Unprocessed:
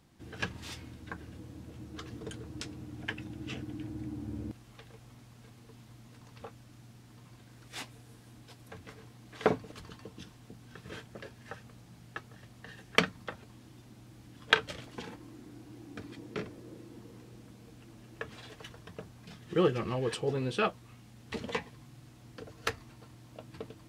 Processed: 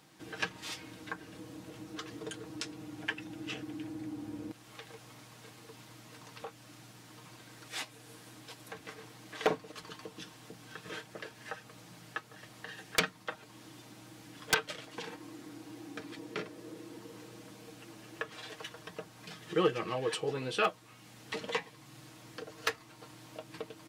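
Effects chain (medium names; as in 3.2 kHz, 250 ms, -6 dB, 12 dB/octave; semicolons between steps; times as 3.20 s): high-pass 470 Hz 6 dB/octave; comb 6.4 ms, depth 47%; in parallel at +2 dB: compression, threshold -52 dBFS, peak gain reduction 31.5 dB; on the sum: wavefolder -16.5 dBFS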